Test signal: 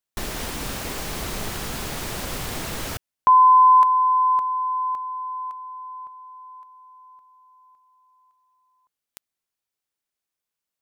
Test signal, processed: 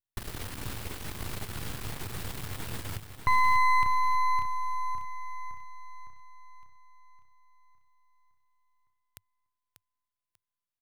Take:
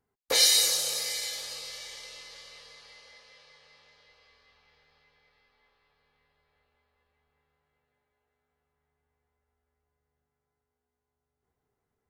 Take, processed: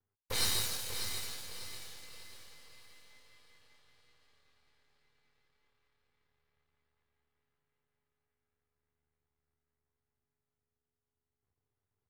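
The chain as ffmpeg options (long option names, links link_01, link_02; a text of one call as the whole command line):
ffmpeg -i in.wav -af "aeval=exprs='max(val(0),0)':channel_layout=same,equalizer=frequency=100:width_type=o:width=0.67:gain=12,equalizer=frequency=630:width_type=o:width=0.67:gain=-4,equalizer=frequency=6300:width_type=o:width=0.67:gain=-4,aecho=1:1:591|1182|1773|2364:0.355|0.121|0.041|0.0139,volume=-5.5dB" out.wav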